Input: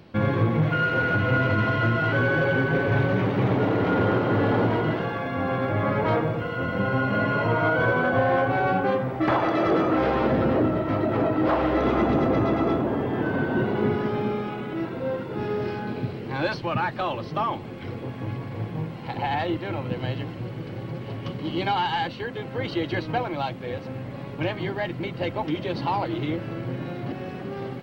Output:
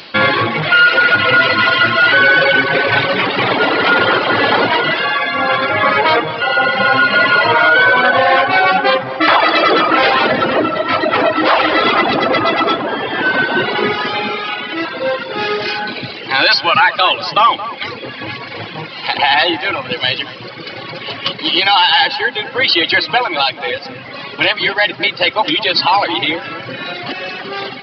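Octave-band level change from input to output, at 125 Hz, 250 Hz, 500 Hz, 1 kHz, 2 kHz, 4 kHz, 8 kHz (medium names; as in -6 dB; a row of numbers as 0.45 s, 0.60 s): -4.0 dB, +2.5 dB, +8.0 dB, +13.5 dB, +16.5 dB, +23.5 dB, no reading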